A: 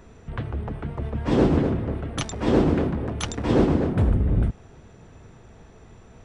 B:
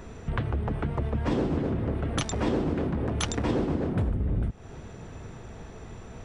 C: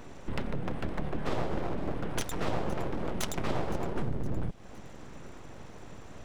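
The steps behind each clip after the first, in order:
downward compressor 6 to 1, threshold −30 dBFS, peak gain reduction 15.5 dB; level +5.5 dB
full-wave rectification; delay with a high-pass on its return 514 ms, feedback 47%, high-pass 3,900 Hz, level −16.5 dB; level −2 dB

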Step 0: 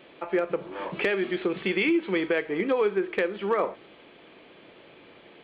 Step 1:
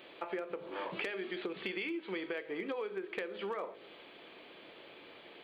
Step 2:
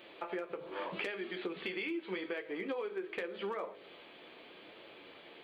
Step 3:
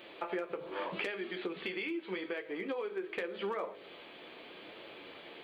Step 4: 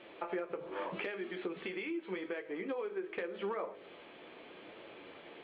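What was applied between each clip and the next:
bass and treble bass −7 dB, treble +9 dB; hum removal 51.33 Hz, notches 13; downward compressor, threshold −34 dBFS, peak gain reduction 12.5 dB; level −2 dB
flanger 0.83 Hz, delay 8.8 ms, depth 4.8 ms, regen −38%; level +3.5 dB
speech leveller within 3 dB 2 s; level +1 dB
high-frequency loss of the air 300 metres

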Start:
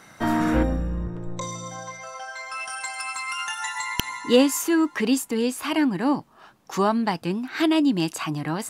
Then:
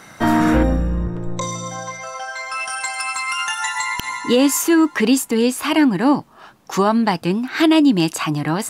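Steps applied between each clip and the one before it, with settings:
boost into a limiter +12 dB
level −5 dB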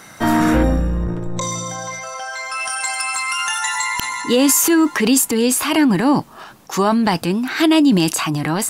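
high-shelf EQ 5,600 Hz +6.5 dB
transient designer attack −1 dB, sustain +7 dB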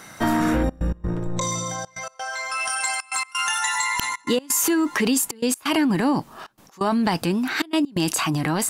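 downward compressor, threshold −15 dBFS, peak gain reduction 5.5 dB
gate pattern "xxxxxx.x.x" 130 BPM −24 dB
level −2 dB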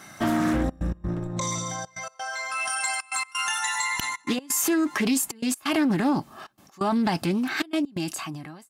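fade-out on the ending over 1.13 s
notch comb filter 480 Hz
highs frequency-modulated by the lows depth 0.19 ms
level −2 dB

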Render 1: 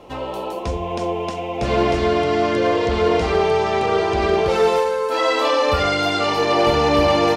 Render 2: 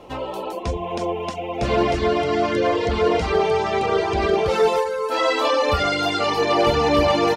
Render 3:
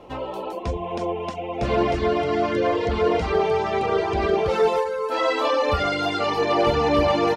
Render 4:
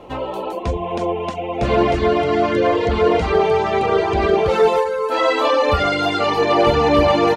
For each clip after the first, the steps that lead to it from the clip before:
reverb reduction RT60 0.64 s
high-shelf EQ 4,000 Hz −7 dB; level −1.5 dB
parametric band 5,300 Hz −4.5 dB 0.24 octaves; level +5 dB

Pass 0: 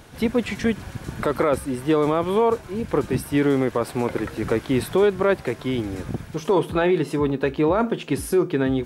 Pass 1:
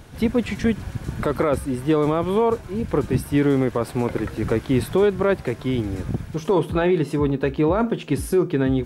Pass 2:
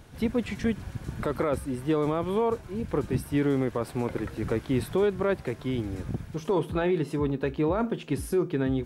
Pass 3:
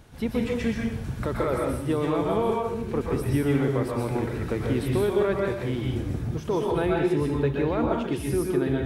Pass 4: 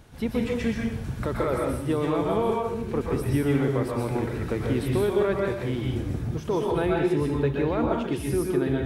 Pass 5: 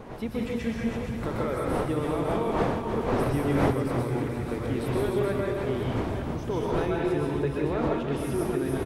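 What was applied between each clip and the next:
low-shelf EQ 200 Hz +8 dB; level −1.5 dB
surface crackle 25 per second −46 dBFS; level −6.5 dB
dense smooth reverb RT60 0.6 s, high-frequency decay 1×, pre-delay 110 ms, DRR −1.5 dB; level −1 dB
no processing that can be heard
delay that plays each chunk backwards 389 ms, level −5.5 dB; wind on the microphone 620 Hz −30 dBFS; single-tap delay 311 ms −8 dB; level −4.5 dB

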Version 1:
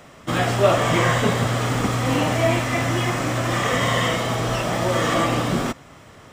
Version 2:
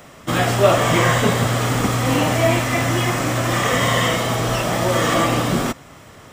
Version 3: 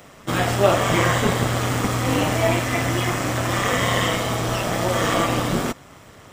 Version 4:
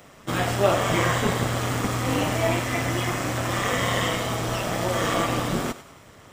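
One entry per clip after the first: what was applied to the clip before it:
high-shelf EQ 10,000 Hz +8.5 dB; level +2.5 dB
amplitude modulation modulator 200 Hz, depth 45%
feedback echo with a high-pass in the loop 99 ms, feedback 47%, level −14 dB; level −3.5 dB

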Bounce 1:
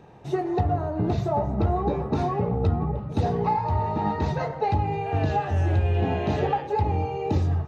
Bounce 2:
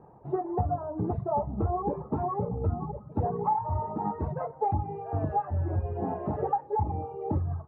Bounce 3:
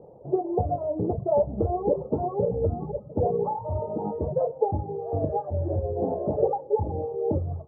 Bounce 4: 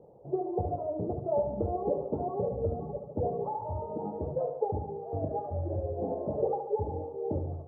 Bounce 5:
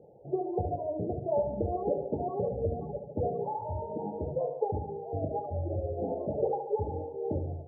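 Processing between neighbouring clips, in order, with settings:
Chebyshev low-pass filter 1,100 Hz, order 3; reverb reduction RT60 1.5 s; low-shelf EQ 470 Hz −4.5 dB
low-pass with resonance 540 Hz, resonance Q 4.9
feedback echo with a high-pass in the loop 72 ms, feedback 62%, high-pass 170 Hz, level −7 dB; level −6.5 dB
spectral peaks only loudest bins 32

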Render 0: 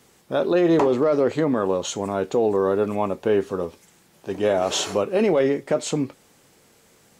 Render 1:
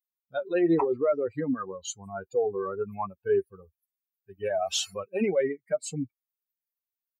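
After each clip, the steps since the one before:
spectral dynamics exaggerated over time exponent 3
low-shelf EQ 98 Hz −9 dB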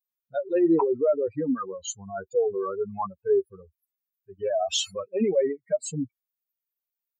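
expanding power law on the bin magnitudes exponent 1.6
level +2.5 dB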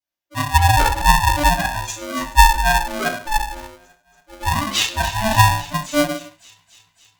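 delay with a high-pass on its return 280 ms, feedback 69%, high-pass 2,700 Hz, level −11.5 dB
convolution reverb RT60 0.45 s, pre-delay 3 ms, DRR −13 dB
ring modulator with a square carrier 440 Hz
level −10.5 dB

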